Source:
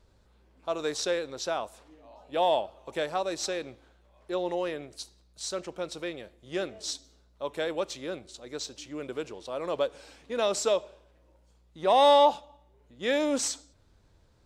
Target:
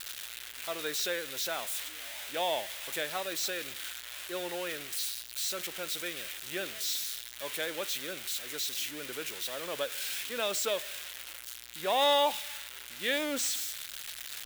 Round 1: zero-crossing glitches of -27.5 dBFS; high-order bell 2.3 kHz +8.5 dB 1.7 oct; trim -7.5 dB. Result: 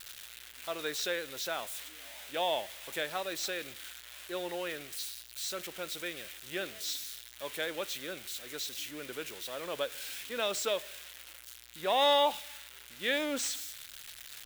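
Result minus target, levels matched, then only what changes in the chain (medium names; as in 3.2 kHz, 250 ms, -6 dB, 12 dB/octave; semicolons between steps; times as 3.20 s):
zero-crossing glitches: distortion -6 dB
change: zero-crossing glitches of -21.5 dBFS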